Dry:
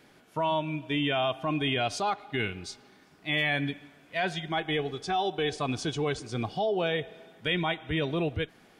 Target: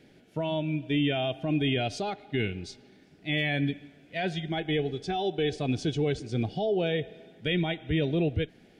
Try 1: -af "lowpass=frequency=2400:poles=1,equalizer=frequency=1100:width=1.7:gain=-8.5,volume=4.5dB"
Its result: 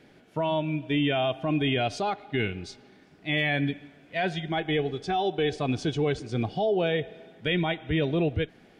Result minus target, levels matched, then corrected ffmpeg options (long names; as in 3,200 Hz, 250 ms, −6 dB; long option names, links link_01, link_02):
1,000 Hz band +3.5 dB
-af "lowpass=frequency=2400:poles=1,equalizer=frequency=1100:width=1.7:gain=-20,volume=4.5dB"